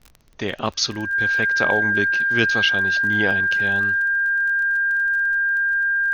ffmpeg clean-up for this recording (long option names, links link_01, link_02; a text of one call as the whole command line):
ffmpeg -i in.wav -af "adeclick=threshold=4,bandreject=frequency=1600:width=30,agate=range=-21dB:threshold=-22dB" out.wav